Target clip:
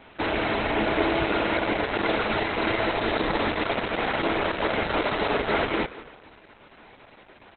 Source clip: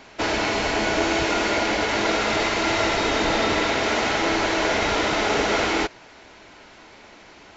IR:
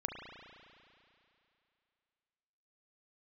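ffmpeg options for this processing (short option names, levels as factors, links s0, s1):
-filter_complex "[0:a]highshelf=f=4300:g=-8,asplit=2[s0][s1];[s1]adelay=217,lowpass=f=3800:p=1,volume=0.0944,asplit=2[s2][s3];[s3]adelay=217,lowpass=f=3800:p=1,volume=0.19[s4];[s0][s2][s4]amix=inputs=3:normalize=0,asplit=2[s5][s6];[1:a]atrim=start_sample=2205,afade=t=out:st=0.39:d=0.01,atrim=end_sample=17640,adelay=149[s7];[s6][s7]afir=irnorm=-1:irlink=0,volume=0.119[s8];[s5][s8]amix=inputs=2:normalize=0" -ar 48000 -c:a libopus -b:a 8k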